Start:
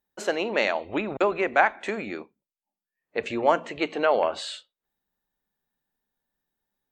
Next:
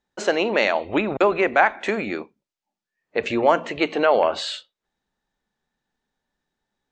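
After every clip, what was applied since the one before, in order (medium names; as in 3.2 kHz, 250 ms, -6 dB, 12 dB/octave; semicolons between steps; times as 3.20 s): low-pass 7.2 kHz 24 dB/octave; in parallel at +0.5 dB: peak limiter -16 dBFS, peak gain reduction 11.5 dB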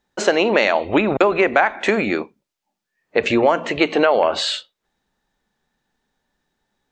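compression, threshold -18 dBFS, peak gain reduction 7.5 dB; trim +7 dB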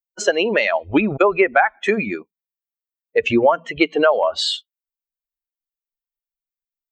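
expander on every frequency bin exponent 2; trim +4 dB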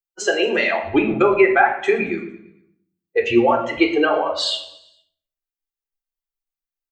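feedback delay 114 ms, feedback 52%, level -19.5 dB; flange 0.97 Hz, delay 4.6 ms, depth 7.1 ms, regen -74%; reverberation RT60 0.60 s, pre-delay 3 ms, DRR 3.5 dB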